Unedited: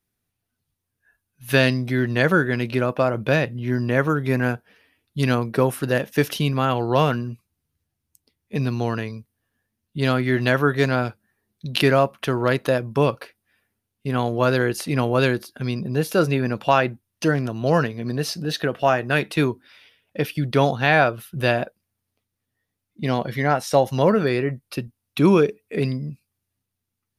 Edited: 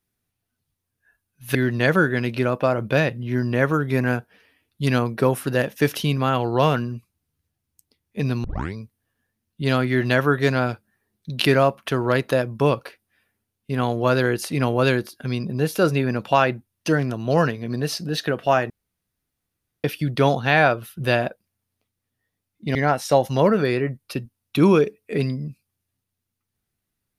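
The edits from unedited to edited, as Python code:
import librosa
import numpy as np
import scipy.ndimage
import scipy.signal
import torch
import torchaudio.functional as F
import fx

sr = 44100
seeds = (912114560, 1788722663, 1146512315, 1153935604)

y = fx.edit(x, sr, fx.cut(start_s=1.55, length_s=0.36),
    fx.tape_start(start_s=8.8, length_s=0.3),
    fx.room_tone_fill(start_s=19.06, length_s=1.14),
    fx.cut(start_s=23.11, length_s=0.26), tone=tone)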